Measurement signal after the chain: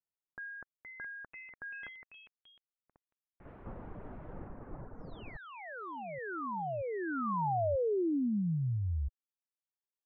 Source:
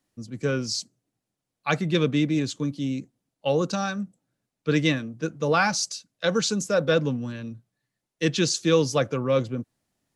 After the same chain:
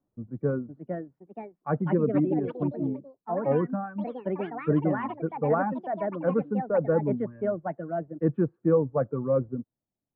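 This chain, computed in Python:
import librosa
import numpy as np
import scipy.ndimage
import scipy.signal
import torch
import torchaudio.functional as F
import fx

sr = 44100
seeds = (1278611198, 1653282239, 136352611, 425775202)

y = fx.dereverb_blind(x, sr, rt60_s=1.2)
y = scipy.signal.sosfilt(scipy.signal.bessel(8, 800.0, 'lowpass', norm='mag', fs=sr, output='sos'), y)
y = fx.echo_pitch(y, sr, ms=548, semitones=4, count=3, db_per_echo=-6.0)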